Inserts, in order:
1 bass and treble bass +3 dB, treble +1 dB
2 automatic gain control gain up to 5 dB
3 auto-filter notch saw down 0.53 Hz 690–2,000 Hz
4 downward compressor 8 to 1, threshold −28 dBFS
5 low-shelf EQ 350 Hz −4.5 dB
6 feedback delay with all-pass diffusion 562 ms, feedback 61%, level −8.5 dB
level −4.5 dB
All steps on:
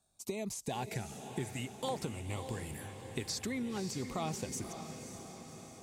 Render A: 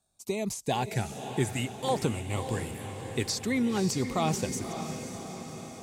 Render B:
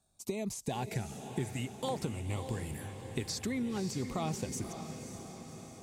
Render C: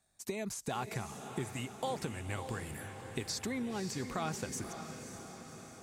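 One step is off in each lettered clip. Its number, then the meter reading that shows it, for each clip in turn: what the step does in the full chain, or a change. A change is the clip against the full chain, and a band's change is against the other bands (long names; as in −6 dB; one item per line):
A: 4, average gain reduction 7.0 dB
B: 5, 125 Hz band +3.5 dB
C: 3, 2 kHz band +3.0 dB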